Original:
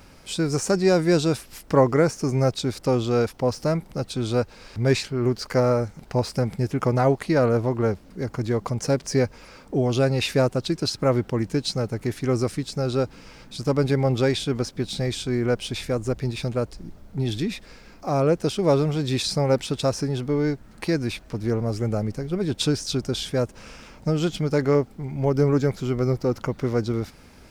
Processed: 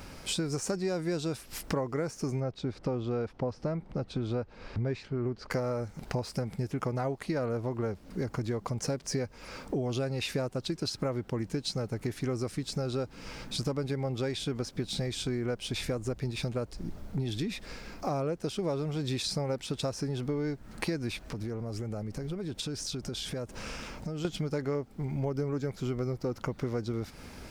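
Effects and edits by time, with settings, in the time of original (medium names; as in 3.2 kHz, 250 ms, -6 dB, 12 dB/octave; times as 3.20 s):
2.40–5.51 s: tape spacing loss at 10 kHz 23 dB
21.24–24.25 s: compression, threshold -36 dBFS
whole clip: compression 6:1, threshold -33 dBFS; trim +3 dB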